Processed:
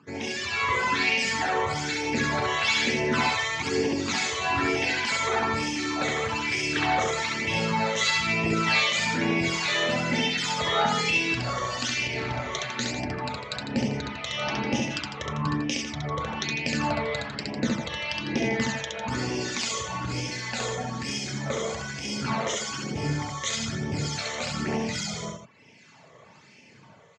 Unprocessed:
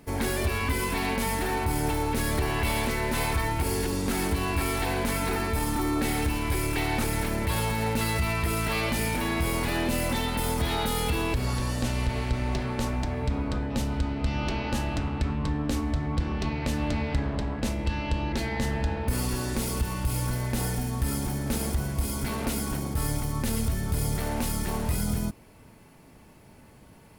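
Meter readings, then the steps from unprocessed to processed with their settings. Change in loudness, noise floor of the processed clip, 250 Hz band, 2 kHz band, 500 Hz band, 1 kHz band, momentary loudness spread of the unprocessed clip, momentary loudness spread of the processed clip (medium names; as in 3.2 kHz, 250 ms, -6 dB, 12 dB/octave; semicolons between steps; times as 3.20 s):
+2.0 dB, -53 dBFS, -0.5 dB, +6.5 dB, +1.5 dB, +3.0 dB, 3 LU, 8 LU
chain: high-pass 120 Hz 24 dB/octave; reverb removal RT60 0.81 s; elliptic low-pass 6.9 kHz, stop band 40 dB; bass shelf 500 Hz -9 dB; level rider gain up to 7 dB; phase shifter stages 12, 1.1 Hz, lowest notch 250–1400 Hz; harmonic tremolo 1.3 Hz, depth 70%, crossover 1.7 kHz; on a send: loudspeakers at several distances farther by 23 m -2 dB, 52 m -9 dB; on the sum: trim +6.5 dB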